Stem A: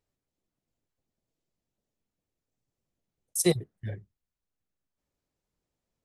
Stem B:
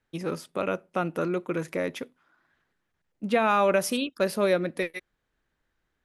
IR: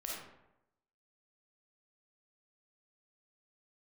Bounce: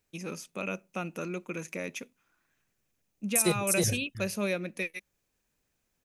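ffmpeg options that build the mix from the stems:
-filter_complex "[0:a]volume=1.26,asplit=2[s0][s1];[s1]volume=0.376[s2];[1:a]equalizer=f=200:t=o:w=0.33:g=9,equalizer=f=2500:t=o:w=0.33:g=12,equalizer=f=6300:t=o:w=0.33:g=12,volume=0.335[s3];[s2]aecho=0:1:316:1[s4];[s0][s3][s4]amix=inputs=3:normalize=0,highshelf=f=5700:g=10,alimiter=limit=0.2:level=0:latency=1:release=307"

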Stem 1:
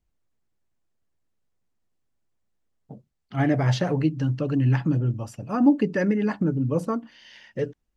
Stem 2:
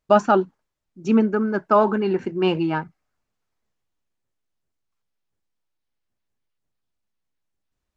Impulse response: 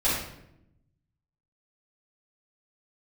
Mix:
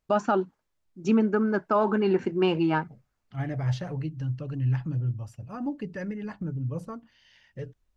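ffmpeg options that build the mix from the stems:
-filter_complex "[0:a]asubboost=boost=7:cutoff=100,volume=0.299[s0];[1:a]volume=0.891[s1];[s0][s1]amix=inputs=2:normalize=0,alimiter=limit=0.2:level=0:latency=1:release=203"

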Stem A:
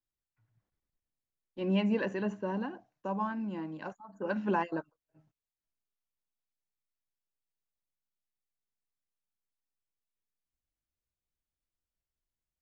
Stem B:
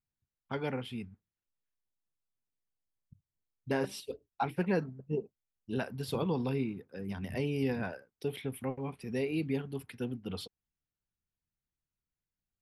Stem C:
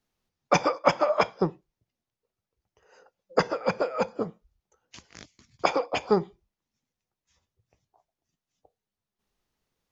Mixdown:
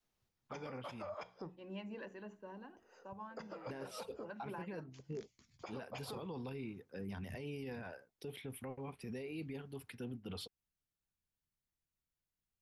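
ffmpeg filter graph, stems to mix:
-filter_complex "[0:a]lowshelf=f=160:g=-10.5,bandreject=f=45.72:t=h:w=4,bandreject=f=91.44:t=h:w=4,bandreject=f=137.16:t=h:w=4,bandreject=f=182.88:t=h:w=4,bandreject=f=228.6:t=h:w=4,bandreject=f=274.32:t=h:w=4,bandreject=f=320.04:t=h:w=4,bandreject=f=365.76:t=h:w=4,bandreject=f=411.48:t=h:w=4,bandreject=f=457.2:t=h:w=4,volume=0.188,asplit=2[s0][s1];[1:a]volume=0.794[s2];[2:a]bandreject=f=60:t=h:w=6,bandreject=f=120:t=h:w=6,bandreject=f=180:t=h:w=6,acompressor=threshold=0.0224:ratio=3,volume=0.596[s3];[s1]apad=whole_len=437230[s4];[s3][s4]sidechaincompress=threshold=0.00316:ratio=8:attack=6.1:release=1370[s5];[s2][s5]amix=inputs=2:normalize=0,adynamicequalizer=threshold=0.00398:dfrequency=200:dqfactor=0.84:tfrequency=200:tqfactor=0.84:attack=5:release=100:ratio=0.375:range=3:mode=cutabove:tftype=bell,alimiter=level_in=2.24:limit=0.0631:level=0:latency=1:release=472,volume=0.447,volume=1[s6];[s0][s6]amix=inputs=2:normalize=0,alimiter=level_in=4.22:limit=0.0631:level=0:latency=1:release=14,volume=0.237"

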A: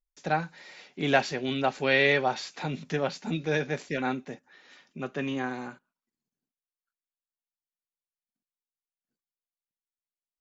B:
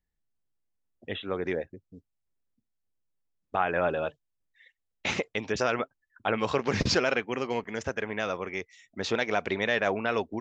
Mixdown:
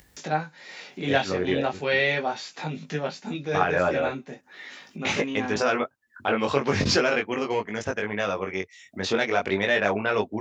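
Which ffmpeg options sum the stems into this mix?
-filter_complex "[0:a]volume=1.33[s0];[1:a]acontrast=61,volume=1.06[s1];[s0][s1]amix=inputs=2:normalize=0,acompressor=mode=upward:threshold=0.0398:ratio=2.5,flanger=delay=19:depth=2.8:speed=0.39,highpass=66"

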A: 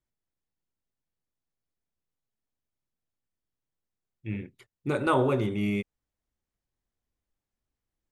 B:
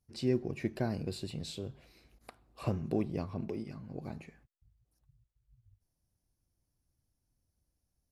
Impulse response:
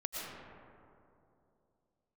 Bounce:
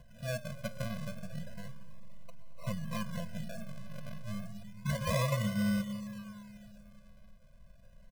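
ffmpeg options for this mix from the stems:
-filter_complex "[0:a]equalizer=f=1000:t=o:w=2.9:g=-6.5,acompressor=mode=upward:threshold=0.0251:ratio=2.5,volume=0.75,asplit=2[s0][s1];[s1]volume=0.266[s2];[1:a]equalizer=f=6600:w=1.3:g=-6.5,volume=0.596,asplit=3[s3][s4][s5];[s4]volume=0.224[s6];[s5]apad=whole_len=357801[s7];[s0][s7]sidechaincompress=threshold=0.00282:ratio=8:attack=7.5:release=412[s8];[2:a]atrim=start_sample=2205[s9];[s2][s6]amix=inputs=2:normalize=0[s10];[s10][s9]afir=irnorm=-1:irlink=0[s11];[s8][s3][s11]amix=inputs=3:normalize=0,aecho=1:1:5.9:0.52,acrusher=samples=37:mix=1:aa=0.000001:lfo=1:lforange=22.2:lforate=0.31,afftfilt=real='re*eq(mod(floor(b*sr/1024/240),2),0)':imag='im*eq(mod(floor(b*sr/1024/240),2),0)':win_size=1024:overlap=0.75"

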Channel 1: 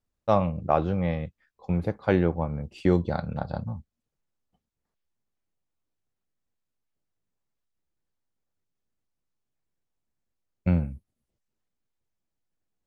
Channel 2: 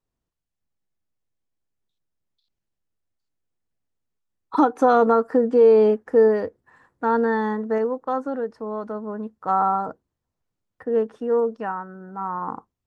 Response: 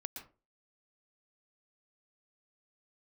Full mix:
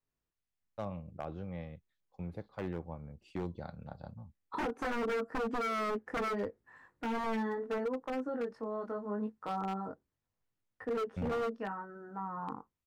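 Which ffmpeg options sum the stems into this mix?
-filter_complex "[0:a]agate=range=0.0224:threshold=0.00447:ratio=3:detection=peak,adelay=500,volume=0.168[s0];[1:a]equalizer=f=2000:w=1.1:g=5,flanger=delay=19:depth=2.9:speed=0.75,volume=0.631[s1];[s0][s1]amix=inputs=2:normalize=0,acrossover=split=460[s2][s3];[s3]acompressor=threshold=0.0112:ratio=5[s4];[s2][s4]amix=inputs=2:normalize=0,aeval=exprs='0.0376*(abs(mod(val(0)/0.0376+3,4)-2)-1)':c=same"

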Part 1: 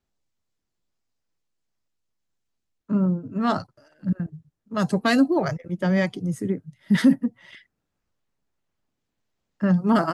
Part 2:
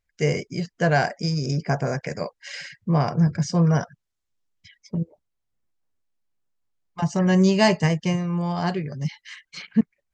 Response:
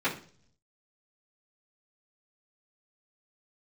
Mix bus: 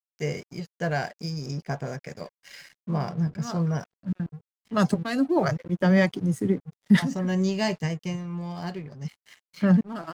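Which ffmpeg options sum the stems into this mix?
-filter_complex "[0:a]volume=1.26[s0];[1:a]adynamicequalizer=threshold=0.0141:dfrequency=1000:dqfactor=0.73:tfrequency=1000:tqfactor=0.73:attack=5:release=100:ratio=0.375:range=2:mode=cutabove:tftype=bell,volume=0.473,asplit=2[s1][s2];[s2]apad=whole_len=446735[s3];[s0][s3]sidechaincompress=threshold=0.00891:ratio=16:attack=23:release=467[s4];[s4][s1]amix=inputs=2:normalize=0,aeval=exprs='sgn(val(0))*max(abs(val(0))-0.00355,0)':c=same"

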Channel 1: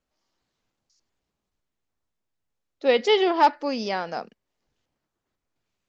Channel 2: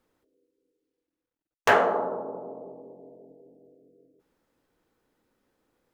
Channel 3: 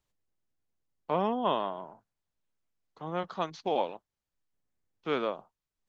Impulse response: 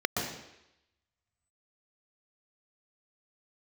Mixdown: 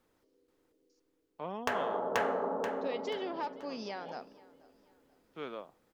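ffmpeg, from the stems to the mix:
-filter_complex "[0:a]acompressor=threshold=0.0355:ratio=2,volume=0.316,asplit=3[s0][s1][s2];[s1]volume=0.0708[s3];[1:a]acompressor=threshold=0.0447:ratio=5,volume=1.06,asplit=2[s4][s5];[s5]volume=0.668[s6];[2:a]adelay=300,volume=0.266[s7];[s2]apad=whole_len=272949[s8];[s7][s8]sidechaincompress=threshold=0.00447:ratio=8:attack=16:release=227[s9];[s0][s4]amix=inputs=2:normalize=0,acompressor=threshold=0.0224:ratio=2,volume=1[s10];[s3][s6]amix=inputs=2:normalize=0,aecho=0:1:483|966|1449|1932|2415:1|0.37|0.137|0.0507|0.0187[s11];[s9][s10][s11]amix=inputs=3:normalize=0"

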